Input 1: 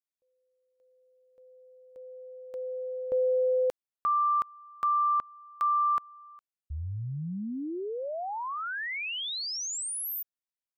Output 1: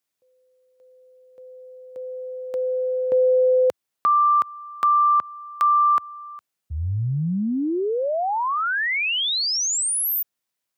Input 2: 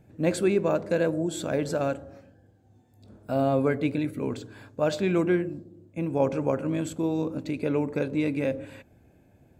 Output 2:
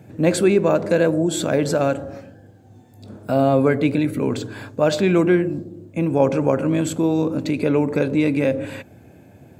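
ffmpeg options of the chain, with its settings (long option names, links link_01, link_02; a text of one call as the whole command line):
ffmpeg -i in.wav -filter_complex "[0:a]highpass=frequency=85:width=0.5412,highpass=frequency=85:width=1.3066,asplit=2[link_01][link_02];[link_02]acompressor=threshold=-35dB:ratio=6:attack=2.5:release=71:knee=1:detection=rms,volume=2dB[link_03];[link_01][link_03]amix=inputs=2:normalize=0,volume=5.5dB" out.wav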